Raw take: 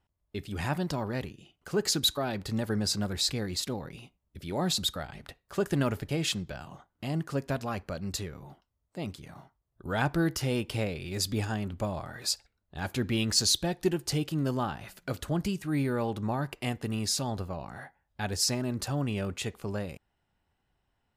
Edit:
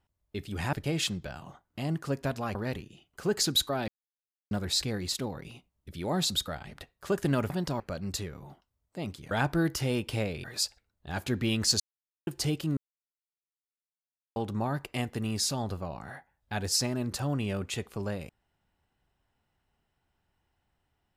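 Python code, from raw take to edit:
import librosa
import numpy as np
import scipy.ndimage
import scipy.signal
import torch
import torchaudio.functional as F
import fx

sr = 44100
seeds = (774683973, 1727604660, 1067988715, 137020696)

y = fx.edit(x, sr, fx.swap(start_s=0.73, length_s=0.3, other_s=5.98, other_length_s=1.82),
    fx.silence(start_s=2.36, length_s=0.63),
    fx.cut(start_s=9.31, length_s=0.61),
    fx.cut(start_s=11.05, length_s=1.07),
    fx.silence(start_s=13.48, length_s=0.47),
    fx.silence(start_s=14.45, length_s=1.59), tone=tone)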